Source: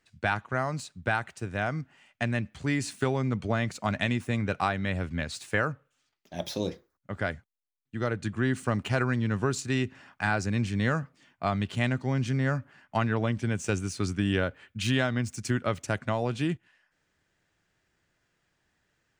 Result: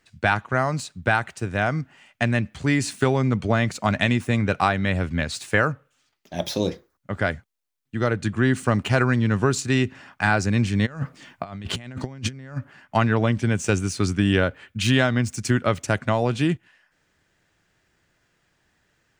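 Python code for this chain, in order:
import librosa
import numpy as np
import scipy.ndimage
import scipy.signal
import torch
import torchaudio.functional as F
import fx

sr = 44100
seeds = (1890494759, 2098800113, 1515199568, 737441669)

y = fx.over_compress(x, sr, threshold_db=-35.0, ratio=-0.5, at=(10.85, 12.56), fade=0.02)
y = F.gain(torch.from_numpy(y), 7.0).numpy()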